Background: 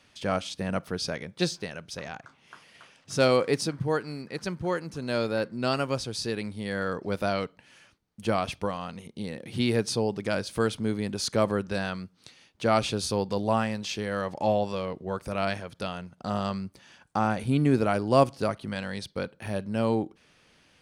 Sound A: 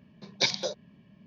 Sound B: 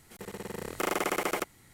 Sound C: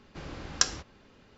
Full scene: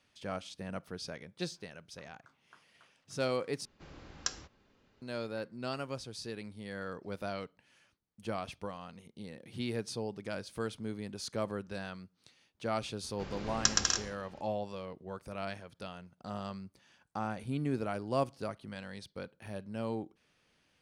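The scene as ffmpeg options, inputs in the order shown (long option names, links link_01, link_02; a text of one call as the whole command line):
ffmpeg -i bed.wav -i cue0.wav -i cue1.wav -i cue2.wav -filter_complex "[3:a]asplit=2[link_01][link_02];[0:a]volume=-11dB[link_03];[link_02]aecho=1:1:120|198|248.7|281.7|303.1:0.794|0.631|0.501|0.398|0.316[link_04];[link_03]asplit=2[link_05][link_06];[link_05]atrim=end=3.654[link_07];[link_01]atrim=end=1.37,asetpts=PTS-STARTPTS,volume=-10.5dB[link_08];[link_06]atrim=start=5.016[link_09];[link_04]atrim=end=1.37,asetpts=PTS-STARTPTS,volume=-3.5dB,afade=type=in:duration=0.004:curve=hsin,afade=type=out:start_time=1.366:duration=0.004:curve=hsin,adelay=13040[link_10];[link_07][link_08]acrossfade=duration=0.004:curve1=hsin:curve2=hsin[link_11];[link_11][link_09]acrossfade=duration=0.004:curve1=hsin:curve2=hsin[link_12];[link_12][link_10]amix=inputs=2:normalize=0" out.wav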